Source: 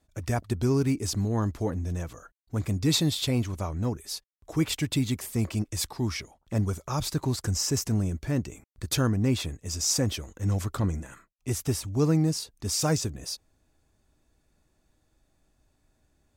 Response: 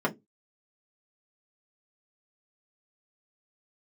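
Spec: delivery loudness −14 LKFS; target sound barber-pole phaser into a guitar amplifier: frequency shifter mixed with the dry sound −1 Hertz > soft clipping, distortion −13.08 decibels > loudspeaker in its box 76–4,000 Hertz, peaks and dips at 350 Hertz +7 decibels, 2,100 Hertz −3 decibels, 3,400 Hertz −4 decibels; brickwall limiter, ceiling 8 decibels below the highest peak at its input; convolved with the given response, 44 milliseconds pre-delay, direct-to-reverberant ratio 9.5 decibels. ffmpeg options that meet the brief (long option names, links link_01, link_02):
-filter_complex "[0:a]alimiter=limit=-20.5dB:level=0:latency=1,asplit=2[link_01][link_02];[1:a]atrim=start_sample=2205,adelay=44[link_03];[link_02][link_03]afir=irnorm=-1:irlink=0,volume=-20.5dB[link_04];[link_01][link_04]amix=inputs=2:normalize=0,asplit=2[link_05][link_06];[link_06]afreqshift=-1[link_07];[link_05][link_07]amix=inputs=2:normalize=1,asoftclip=threshold=-29dB,highpass=76,equalizer=frequency=350:width_type=q:width=4:gain=7,equalizer=frequency=2100:width_type=q:width=4:gain=-3,equalizer=frequency=3400:width_type=q:width=4:gain=-4,lowpass=frequency=4000:width=0.5412,lowpass=frequency=4000:width=1.3066,volume=22.5dB"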